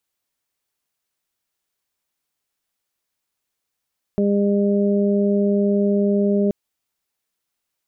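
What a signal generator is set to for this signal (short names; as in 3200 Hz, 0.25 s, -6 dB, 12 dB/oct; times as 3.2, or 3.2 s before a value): steady additive tone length 2.33 s, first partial 202 Hz, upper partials -3/-8 dB, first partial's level -17 dB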